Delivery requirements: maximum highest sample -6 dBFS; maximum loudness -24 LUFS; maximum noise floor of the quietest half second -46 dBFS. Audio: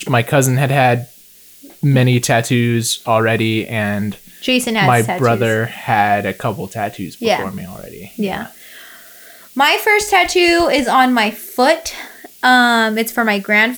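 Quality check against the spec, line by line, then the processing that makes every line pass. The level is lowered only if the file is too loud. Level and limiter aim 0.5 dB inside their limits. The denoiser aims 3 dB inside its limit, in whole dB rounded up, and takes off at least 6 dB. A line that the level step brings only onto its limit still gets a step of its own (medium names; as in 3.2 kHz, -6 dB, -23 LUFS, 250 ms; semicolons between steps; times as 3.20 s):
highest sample -2.0 dBFS: fail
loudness -15.0 LUFS: fail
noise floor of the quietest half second -44 dBFS: fail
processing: trim -9.5 dB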